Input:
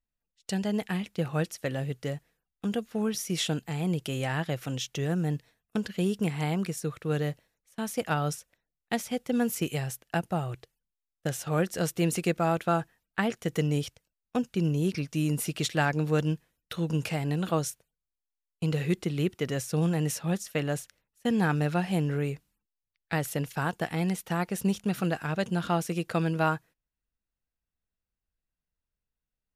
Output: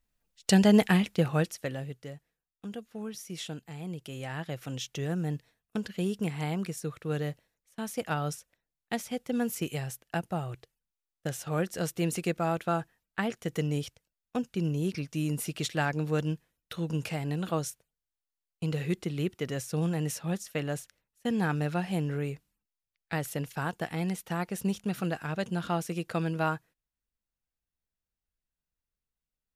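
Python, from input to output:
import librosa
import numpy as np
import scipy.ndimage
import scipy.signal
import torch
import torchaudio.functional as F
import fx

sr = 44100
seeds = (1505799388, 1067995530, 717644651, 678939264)

y = fx.gain(x, sr, db=fx.line((0.82, 9.0), (1.51, 0.0), (2.07, -9.5), (3.99, -9.5), (4.83, -3.0)))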